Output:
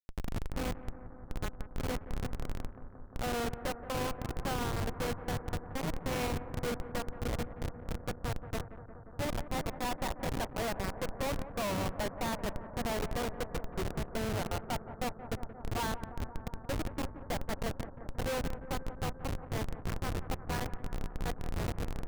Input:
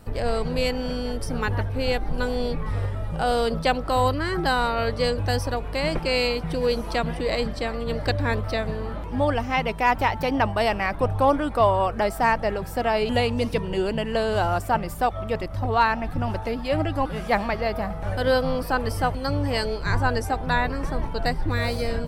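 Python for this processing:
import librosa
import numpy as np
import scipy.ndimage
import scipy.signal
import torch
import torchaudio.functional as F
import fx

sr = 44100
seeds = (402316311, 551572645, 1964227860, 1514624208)

p1 = fx.hum_notches(x, sr, base_hz=50, count=9)
p2 = fx.schmitt(p1, sr, flips_db=-20.0)
p3 = p2 + fx.echo_bbd(p2, sr, ms=176, stages=2048, feedback_pct=82, wet_db=-13.5, dry=0)
y = F.gain(torch.from_numpy(p3), -8.0).numpy()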